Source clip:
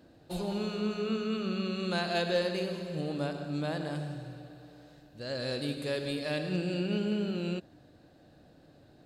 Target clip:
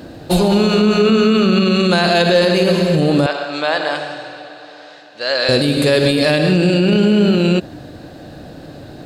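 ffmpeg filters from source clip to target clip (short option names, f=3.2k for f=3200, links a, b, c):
-filter_complex "[0:a]asettb=1/sr,asplit=3[a][b][c];[a]atrim=end=3.264[d];[b]atrim=start=3.26:end=5.49,asetpts=PTS-STARTPTS,afade=t=in:d=0.004:c=qsin,afade=t=out:st=2.226:d=0.004:c=qsin,highpass=730,lowpass=4.8k[e];[c]atrim=start=5.486[f];[d][e]acrossfade=d=0.004:c1=hsin:c2=qsin[g];[g][f]acrossfade=d=0.004:c1=qsin:c2=hsin,alimiter=level_in=27.5dB:limit=-1dB:release=50:level=0:latency=1,volume=-4dB"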